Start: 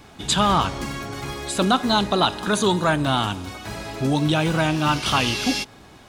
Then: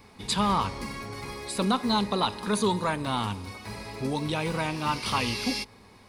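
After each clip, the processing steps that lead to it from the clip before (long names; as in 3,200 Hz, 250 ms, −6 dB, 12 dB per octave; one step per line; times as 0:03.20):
EQ curve with evenly spaced ripples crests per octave 0.9, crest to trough 8 dB
level −7 dB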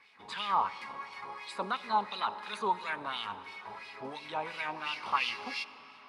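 auto-filter band-pass sine 2.9 Hz 810–3,000 Hz
convolution reverb RT60 5.0 s, pre-delay 45 ms, DRR 15.5 dB
level +2 dB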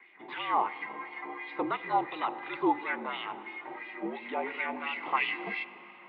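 single-sideband voice off tune −62 Hz 270–3,200 Hz
hollow resonant body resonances 300/2,000 Hz, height 12 dB, ringing for 20 ms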